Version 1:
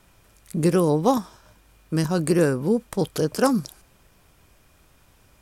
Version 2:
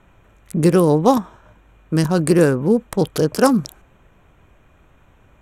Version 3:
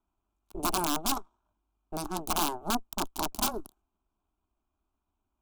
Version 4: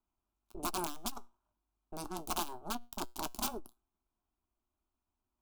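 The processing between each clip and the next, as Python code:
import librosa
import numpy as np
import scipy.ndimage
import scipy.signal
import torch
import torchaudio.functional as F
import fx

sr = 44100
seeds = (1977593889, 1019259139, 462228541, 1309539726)

y1 = fx.wiener(x, sr, points=9)
y1 = y1 * 10.0 ** (5.5 / 20.0)
y2 = fx.cheby_harmonics(y1, sr, harmonics=(3, 6), levels_db=(-9, -19), full_scale_db=-1.0)
y2 = (np.mod(10.0 ** (13.0 / 20.0) * y2 + 1.0, 2.0) - 1.0) / 10.0 ** (13.0 / 20.0)
y2 = fx.fixed_phaser(y2, sr, hz=510.0, stages=6)
y2 = y2 * 10.0 ** (-2.5 / 20.0)
y3 = fx.comb_fb(y2, sr, f0_hz=120.0, decay_s=0.2, harmonics='all', damping=0.0, mix_pct=50)
y3 = fx.transformer_sat(y3, sr, knee_hz=160.0)
y3 = y3 * 10.0 ** (-2.0 / 20.0)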